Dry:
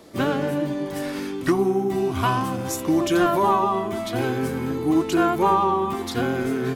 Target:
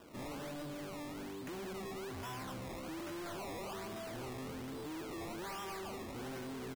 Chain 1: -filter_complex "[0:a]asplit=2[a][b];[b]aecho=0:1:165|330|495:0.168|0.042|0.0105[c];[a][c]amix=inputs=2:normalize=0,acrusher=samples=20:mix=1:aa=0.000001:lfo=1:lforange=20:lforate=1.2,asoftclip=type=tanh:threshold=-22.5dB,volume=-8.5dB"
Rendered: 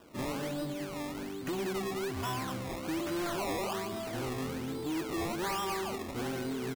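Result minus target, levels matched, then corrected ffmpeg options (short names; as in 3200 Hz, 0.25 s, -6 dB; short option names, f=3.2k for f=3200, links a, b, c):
soft clip: distortion -6 dB
-filter_complex "[0:a]asplit=2[a][b];[b]aecho=0:1:165|330|495:0.168|0.042|0.0105[c];[a][c]amix=inputs=2:normalize=0,acrusher=samples=20:mix=1:aa=0.000001:lfo=1:lforange=20:lforate=1.2,asoftclip=type=tanh:threshold=-34dB,volume=-8.5dB"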